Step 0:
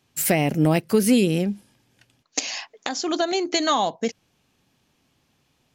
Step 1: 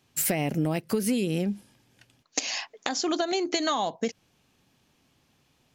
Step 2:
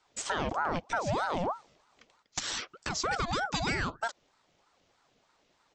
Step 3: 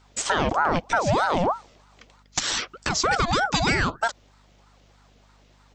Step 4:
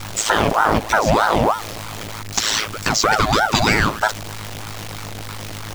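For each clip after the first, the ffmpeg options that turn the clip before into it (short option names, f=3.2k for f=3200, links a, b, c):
-af "acompressor=threshold=-23dB:ratio=6"
-af "aresample=16000,asoftclip=type=tanh:threshold=-20dB,aresample=44100,aeval=exprs='val(0)*sin(2*PI*750*n/s+750*0.55/3.2*sin(2*PI*3.2*n/s))':c=same"
-af "aeval=exprs='val(0)+0.000501*(sin(2*PI*50*n/s)+sin(2*PI*2*50*n/s)/2+sin(2*PI*3*50*n/s)/3+sin(2*PI*4*50*n/s)/4+sin(2*PI*5*50*n/s)/5)':c=same,volume=9dB"
-af "aeval=exprs='val(0)+0.5*0.0335*sgn(val(0))':c=same,aeval=exprs='val(0)*sin(2*PI*54*n/s)':c=same,volume=7.5dB"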